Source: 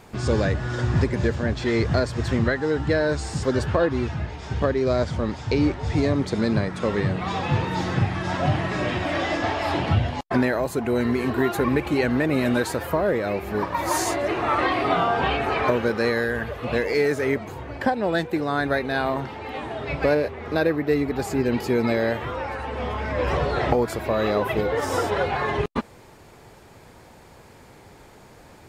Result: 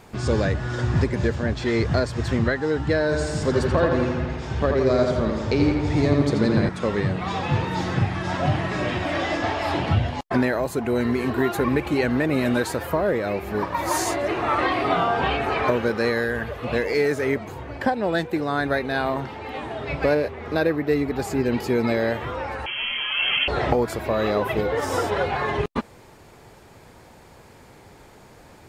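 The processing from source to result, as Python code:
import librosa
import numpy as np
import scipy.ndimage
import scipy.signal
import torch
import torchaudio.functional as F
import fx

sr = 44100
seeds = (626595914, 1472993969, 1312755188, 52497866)

y = fx.echo_filtered(x, sr, ms=84, feedback_pct=67, hz=4600.0, wet_db=-4.0, at=(3.04, 6.69))
y = fx.freq_invert(y, sr, carrier_hz=3200, at=(22.66, 23.48))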